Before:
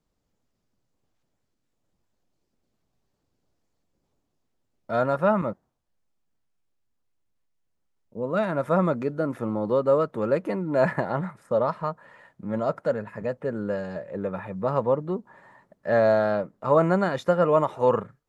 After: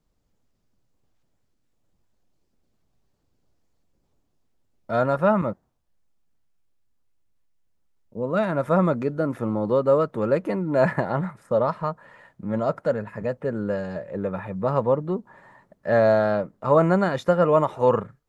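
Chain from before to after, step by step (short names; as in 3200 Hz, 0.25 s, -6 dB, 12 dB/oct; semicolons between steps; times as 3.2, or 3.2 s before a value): low shelf 97 Hz +6.5 dB; gain +1.5 dB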